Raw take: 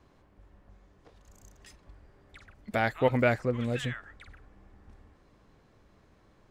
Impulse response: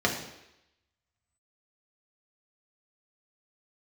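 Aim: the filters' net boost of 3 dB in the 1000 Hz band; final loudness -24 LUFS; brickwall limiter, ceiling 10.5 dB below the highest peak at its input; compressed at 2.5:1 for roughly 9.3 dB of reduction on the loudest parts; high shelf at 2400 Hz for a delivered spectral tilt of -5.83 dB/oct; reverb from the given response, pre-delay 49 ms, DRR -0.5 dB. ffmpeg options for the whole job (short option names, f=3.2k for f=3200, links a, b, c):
-filter_complex "[0:a]equalizer=f=1k:t=o:g=5,highshelf=f=2.4k:g=-5,acompressor=threshold=-32dB:ratio=2.5,alimiter=level_in=4.5dB:limit=-24dB:level=0:latency=1,volume=-4.5dB,asplit=2[a][b];[1:a]atrim=start_sample=2205,adelay=49[c];[b][c]afir=irnorm=-1:irlink=0,volume=-12.5dB[d];[a][d]amix=inputs=2:normalize=0,volume=12.5dB"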